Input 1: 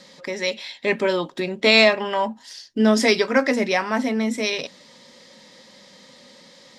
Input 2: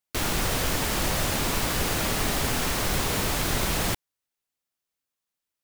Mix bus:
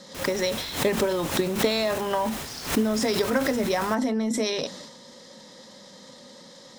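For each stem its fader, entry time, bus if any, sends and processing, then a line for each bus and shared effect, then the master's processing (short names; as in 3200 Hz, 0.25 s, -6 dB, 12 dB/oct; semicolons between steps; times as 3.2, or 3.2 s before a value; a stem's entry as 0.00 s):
+2.0 dB, 0.00 s, no send, bell 2400 Hz -10.5 dB 0.75 oct; compressor, threshold -25 dBFS, peak gain reduction 12.5 dB
-14.5 dB, 0.00 s, no send, HPF 95 Hz 6 dB/oct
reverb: off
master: notch 4600 Hz, Q 18; transient shaper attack +4 dB, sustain +8 dB; backwards sustainer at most 120 dB/s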